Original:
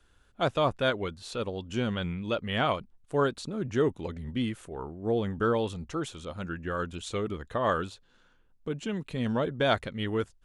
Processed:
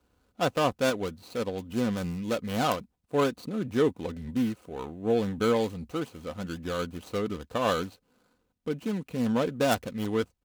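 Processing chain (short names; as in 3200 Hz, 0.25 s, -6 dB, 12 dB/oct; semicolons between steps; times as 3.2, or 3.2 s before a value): median filter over 25 samples; high shelf 3500 Hz +9 dB; wrapped overs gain 15 dB; HPF 79 Hz; comb 4 ms, depth 35%; gain +1.5 dB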